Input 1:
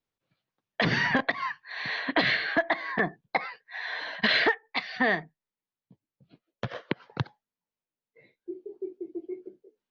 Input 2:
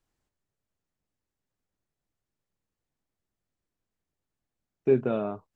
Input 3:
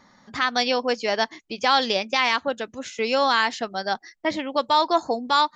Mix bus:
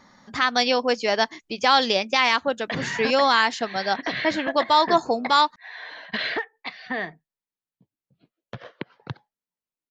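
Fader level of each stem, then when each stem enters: -4.0, -19.5, +1.5 dB; 1.90, 0.00, 0.00 s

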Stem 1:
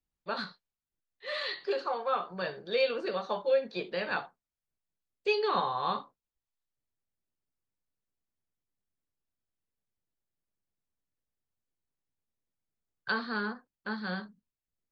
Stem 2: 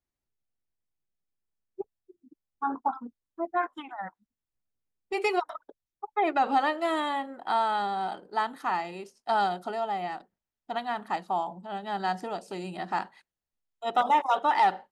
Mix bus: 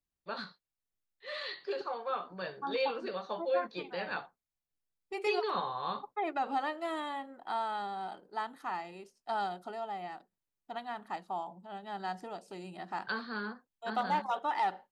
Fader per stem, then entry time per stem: -5.0, -8.5 dB; 0.00, 0.00 s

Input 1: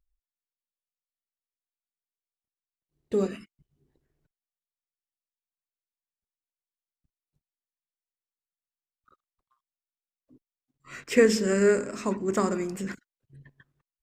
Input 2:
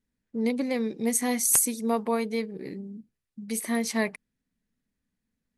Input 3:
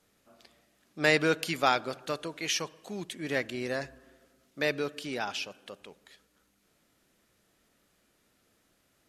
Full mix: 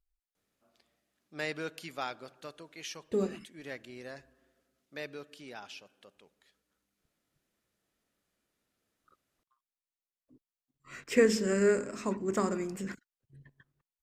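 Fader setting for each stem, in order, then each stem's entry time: -4.5 dB, off, -12.0 dB; 0.00 s, off, 0.35 s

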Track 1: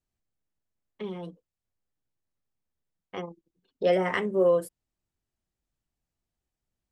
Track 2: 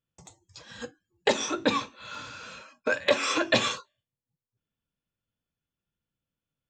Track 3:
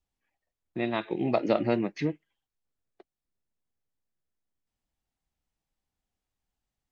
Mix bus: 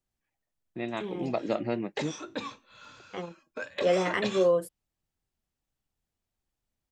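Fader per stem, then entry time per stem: -1.5, -11.0, -4.5 dB; 0.00, 0.70, 0.00 s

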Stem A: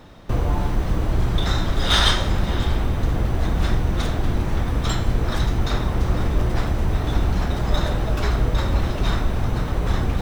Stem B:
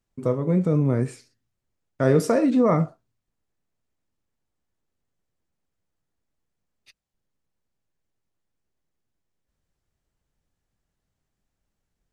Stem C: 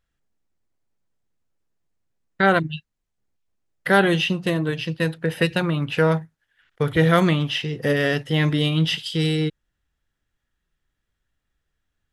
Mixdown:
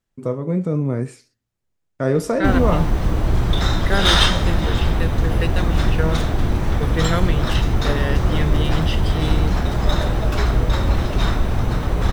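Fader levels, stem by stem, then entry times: +2.5, 0.0, -5.5 dB; 2.15, 0.00, 0.00 s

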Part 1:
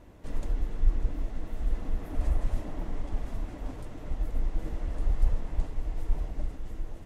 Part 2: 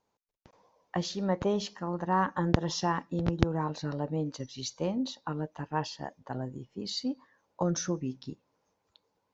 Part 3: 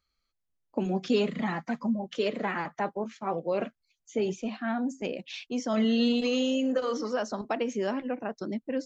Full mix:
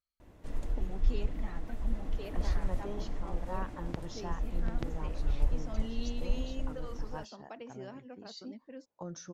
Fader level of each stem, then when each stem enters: -4.0, -13.5, -16.5 dB; 0.20, 1.40, 0.00 s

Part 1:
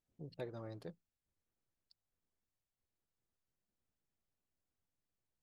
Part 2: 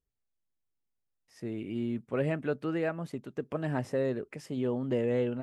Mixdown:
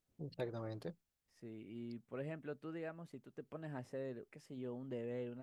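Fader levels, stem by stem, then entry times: +3.0, -14.5 dB; 0.00, 0.00 s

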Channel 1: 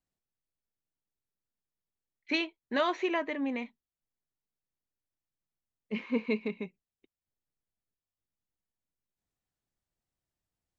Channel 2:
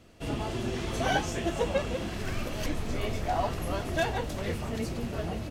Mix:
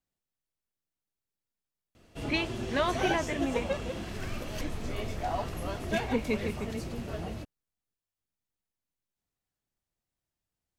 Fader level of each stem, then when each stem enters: 0.0, -3.5 dB; 0.00, 1.95 s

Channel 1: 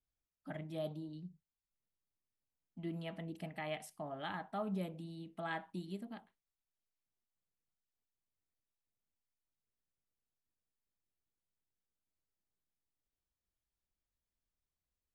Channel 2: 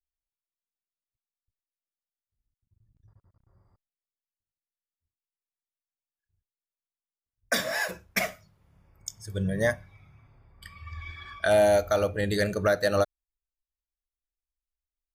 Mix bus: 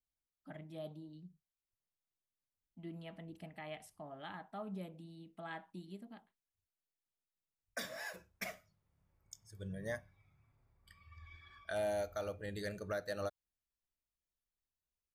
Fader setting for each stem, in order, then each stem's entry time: -5.5, -16.0 dB; 0.00, 0.25 s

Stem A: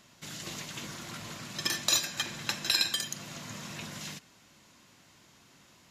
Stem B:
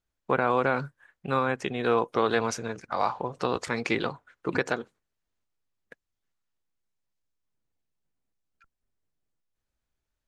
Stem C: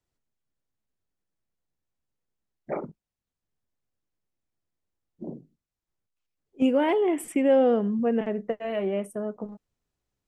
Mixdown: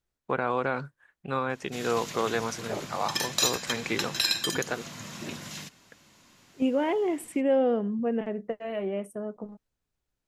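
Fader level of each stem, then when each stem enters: +1.0, -3.5, -3.5 dB; 1.50, 0.00, 0.00 s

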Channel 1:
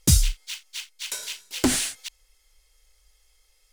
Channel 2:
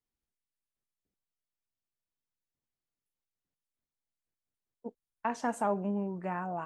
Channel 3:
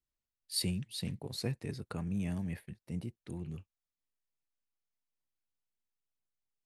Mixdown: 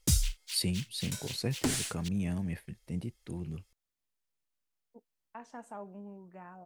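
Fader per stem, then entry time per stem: -9.0, -14.0, +2.5 dB; 0.00, 0.10, 0.00 s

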